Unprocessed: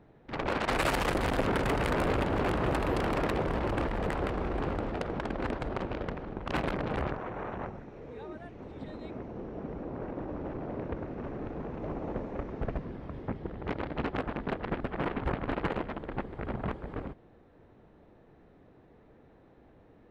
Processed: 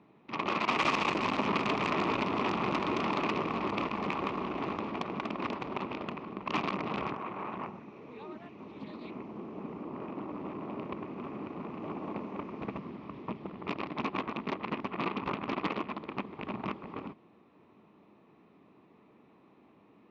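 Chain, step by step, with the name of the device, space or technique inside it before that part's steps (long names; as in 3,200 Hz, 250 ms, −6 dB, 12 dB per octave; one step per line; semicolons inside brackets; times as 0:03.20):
full-range speaker at full volume (highs frequency-modulated by the lows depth 0.93 ms; loudspeaker in its box 200–6,200 Hz, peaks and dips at 200 Hz +5 dB, 510 Hz −8 dB, 720 Hz −4 dB, 1,100 Hz +8 dB, 1,600 Hz −10 dB, 2,500 Hz +8 dB)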